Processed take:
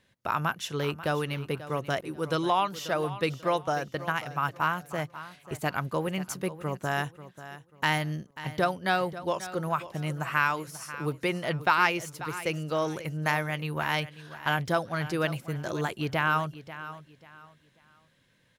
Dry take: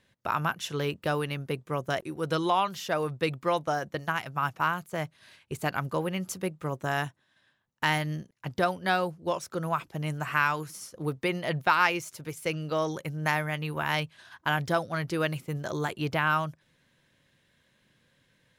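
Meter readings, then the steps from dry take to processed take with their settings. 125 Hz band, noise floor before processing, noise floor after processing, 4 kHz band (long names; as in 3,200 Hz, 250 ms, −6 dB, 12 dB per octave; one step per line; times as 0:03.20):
0.0 dB, −70 dBFS, −66 dBFS, 0.0 dB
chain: repeating echo 539 ms, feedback 28%, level −14.5 dB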